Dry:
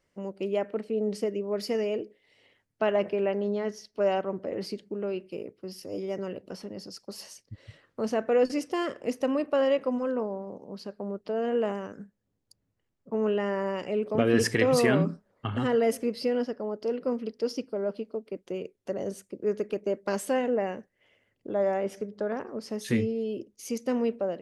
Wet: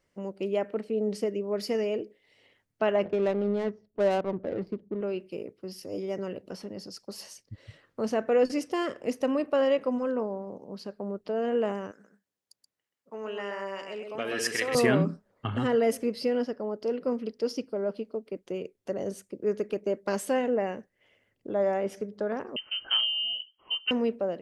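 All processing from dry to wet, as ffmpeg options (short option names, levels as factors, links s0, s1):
-filter_complex "[0:a]asettb=1/sr,asplit=3[s0][s1][s2];[s0]atrim=end=3.054[s3];[s1]atrim=start=3.05:end=5.01,asetpts=PTS-STARTPTS,afade=t=in:d=0.004:c=qsin,afade=t=out:st=1.956:d=0.004:c=qsin,adynamicsmooth=sensitivity=4.5:basefreq=590,lowshelf=f=190:g=5[s4];[s2]atrim=start=5.006[s5];[s3][s4]acrossfade=d=0.004:c1=hsin:c2=qsin[s6];[s6][s5]acrossfade=d=0.004:c1=qsin:c2=hsin,asettb=1/sr,asplit=3[s7][s8][s9];[s7]atrim=end=11.914[s10];[s8]atrim=start=11.91:end=14.75,asetpts=PTS-STARTPTS,afade=t=in:d=0.004:c=qsin,afade=t=out:st=2.836:d=0.004:c=qsin,highpass=f=1300:p=1,aecho=1:1:128:0.531,atrim=end_sample=125244[s11];[s9]atrim=start=14.746[s12];[s10][s11]acrossfade=d=0.004:c1=hsin:c2=qsin[s13];[s13][s12]acrossfade=d=0.004:c1=qsin:c2=hsin,asettb=1/sr,asplit=3[s14][s15][s16];[s14]atrim=end=22.564[s17];[s15]atrim=start=22.56:end=23.91,asetpts=PTS-STARTPTS,afade=t=in:d=0.004:c=qsin,afade=t=out:st=1.346:d=0.004:c=qsin,asoftclip=type=hard:threshold=0.1,lowpass=f=2800:t=q:w=0.5098,lowpass=f=2800:t=q:w=0.6013,lowpass=f=2800:t=q:w=0.9,lowpass=f=2800:t=q:w=2.563,afreqshift=-3300[s18];[s16]atrim=start=23.906[s19];[s17][s18]acrossfade=d=0.004:c1=hsin:c2=qsin[s20];[s20][s19]acrossfade=d=0.004:c1=qsin:c2=hsin"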